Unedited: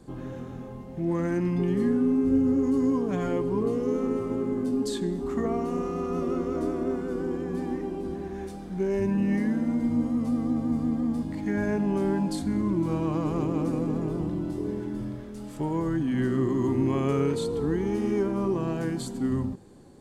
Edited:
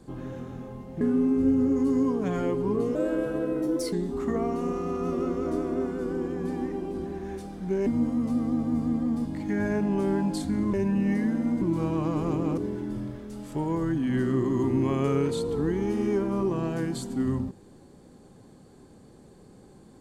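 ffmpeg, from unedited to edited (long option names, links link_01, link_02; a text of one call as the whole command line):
ffmpeg -i in.wav -filter_complex "[0:a]asplit=8[link_01][link_02][link_03][link_04][link_05][link_06][link_07][link_08];[link_01]atrim=end=1.012[link_09];[link_02]atrim=start=1.878:end=3.824[link_10];[link_03]atrim=start=3.82:end=5.02,asetpts=PTS-STARTPTS,asetrate=54243,aresample=44100,atrim=end_sample=43024,asetpts=PTS-STARTPTS[link_11];[link_04]atrim=start=5.016:end=8.962[link_12];[link_05]atrim=start=9.838:end=12.712[link_13];[link_06]atrim=start=8.958:end=9.842[link_14];[link_07]atrim=start=12.708:end=13.672[link_15];[link_08]atrim=start=14.618[link_16];[link_09][link_10]acrossfade=duration=0.004:curve1=hsin:curve2=hsin[link_17];[link_17][link_11]acrossfade=duration=0.004:curve1=hsin:curve2=hsin[link_18];[link_18][link_12]acrossfade=duration=0.004:curve1=hsin:curve2=hsin[link_19];[link_19][link_13]acrossfade=duration=0.004:curve1=hsin:curve2=hsin[link_20];[link_20][link_14]acrossfade=duration=0.004:curve1=hsin:curve2=hsin[link_21];[link_21][link_15]acrossfade=duration=0.004:curve1=hsin:curve2=hsin[link_22];[link_22][link_16]acrossfade=duration=0.004:curve1=hsin:curve2=hsin" out.wav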